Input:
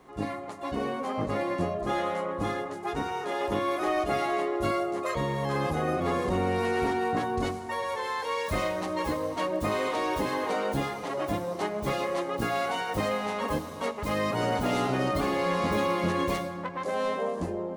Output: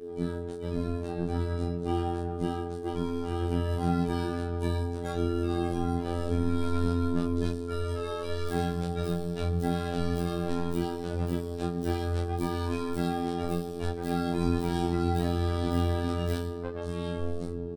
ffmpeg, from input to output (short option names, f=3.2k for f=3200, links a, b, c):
-filter_complex "[0:a]aeval=exprs='val(0)+0.0126*(sin(2*PI*50*n/s)+sin(2*PI*2*50*n/s)/2+sin(2*PI*3*50*n/s)/3+sin(2*PI*4*50*n/s)/4+sin(2*PI*5*50*n/s)/5)':c=same,afreqshift=-470,afftfilt=real='hypot(re,im)*cos(PI*b)':imag='0':win_size=2048:overlap=0.75,asplit=2[a][b];[b]adelay=23,volume=-3dB[c];[a][c]amix=inputs=2:normalize=0,volume=-1.5dB"